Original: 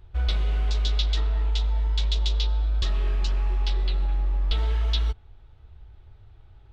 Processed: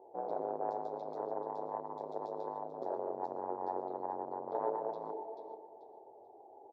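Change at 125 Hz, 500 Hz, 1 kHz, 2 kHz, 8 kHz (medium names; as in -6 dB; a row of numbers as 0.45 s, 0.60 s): -34.5 dB, +6.0 dB, +5.0 dB, under -20 dB, no reading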